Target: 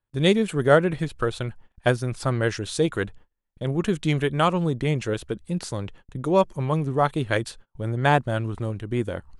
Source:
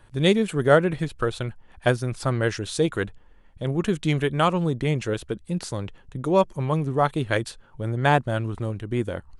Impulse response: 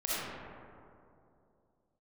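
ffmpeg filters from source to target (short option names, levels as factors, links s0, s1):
-af "agate=range=0.0316:threshold=0.00631:ratio=16:detection=peak"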